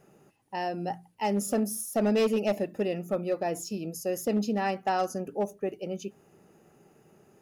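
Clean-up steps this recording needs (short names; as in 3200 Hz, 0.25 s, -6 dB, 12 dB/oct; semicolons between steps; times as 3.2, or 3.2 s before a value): clip repair -20 dBFS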